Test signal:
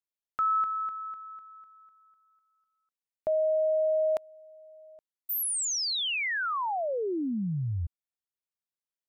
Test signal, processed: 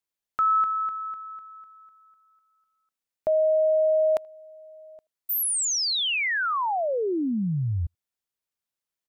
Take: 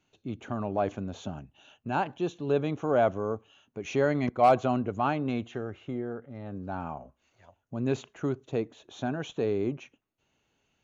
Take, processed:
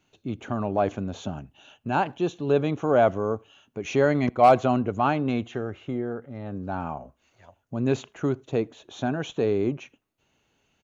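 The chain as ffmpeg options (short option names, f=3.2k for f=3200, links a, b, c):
-filter_complex "[0:a]asplit=2[a][b];[b]adelay=80,highpass=300,lowpass=3.4k,asoftclip=type=hard:threshold=-21.5dB,volume=-29dB[c];[a][c]amix=inputs=2:normalize=0,volume=4.5dB"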